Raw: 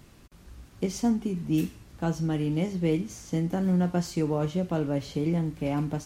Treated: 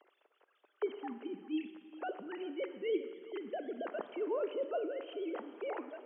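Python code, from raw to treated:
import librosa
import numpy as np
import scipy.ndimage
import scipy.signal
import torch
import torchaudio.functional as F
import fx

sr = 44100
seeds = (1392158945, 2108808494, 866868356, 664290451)

p1 = fx.sine_speech(x, sr)
p2 = scipy.signal.sosfilt(scipy.signal.butter(4, 370.0, 'highpass', fs=sr, output='sos'), p1)
p3 = fx.peak_eq(p2, sr, hz=2200.0, db=-4.5, octaves=0.77)
p4 = fx.hpss(p3, sr, part='harmonic', gain_db=-8)
p5 = fx.peak_eq(p4, sr, hz=860.0, db=-2.5, octaves=0.77)
p6 = p5 + fx.echo_single(p5, sr, ms=402, db=-18.5, dry=0)
p7 = fx.rev_schroeder(p6, sr, rt60_s=1.8, comb_ms=38, drr_db=10.5)
y = p7 * 10.0 ** (-2.0 / 20.0)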